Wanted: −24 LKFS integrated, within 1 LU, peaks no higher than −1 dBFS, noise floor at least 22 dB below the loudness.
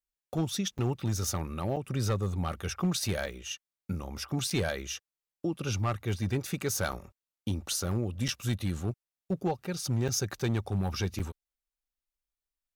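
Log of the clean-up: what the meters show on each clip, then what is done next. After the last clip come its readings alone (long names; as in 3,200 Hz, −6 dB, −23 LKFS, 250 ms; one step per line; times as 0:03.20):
share of clipped samples 0.9%; peaks flattened at −22.0 dBFS; number of dropouts 8; longest dropout 6.6 ms; integrated loudness −32.5 LKFS; sample peak −22.0 dBFS; target loudness −24.0 LKFS
→ clipped peaks rebuilt −22 dBFS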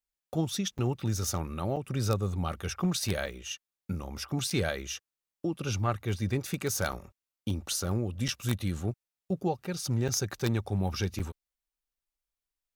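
share of clipped samples 0.0%; number of dropouts 8; longest dropout 6.6 ms
→ repair the gap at 0:00.78/0:01.76/0:03.26/0:04.50/0:06.92/0:08.28/0:10.08/0:11.19, 6.6 ms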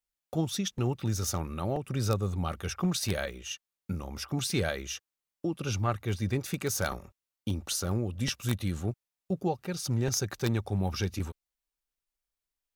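number of dropouts 0; integrated loudness −32.5 LKFS; sample peak −13.0 dBFS; target loudness −24.0 LKFS
→ level +8.5 dB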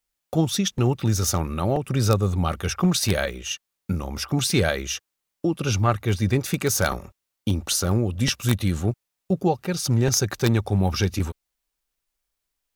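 integrated loudness −24.0 LKFS; sample peak −4.5 dBFS; background noise floor −82 dBFS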